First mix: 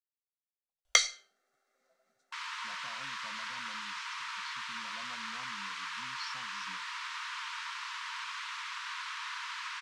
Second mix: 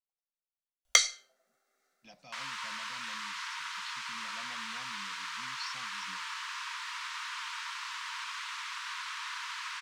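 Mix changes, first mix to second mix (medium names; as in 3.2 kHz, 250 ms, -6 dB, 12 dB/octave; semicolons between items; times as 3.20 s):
speech: entry -0.60 s; master: add treble shelf 9.9 kHz +12 dB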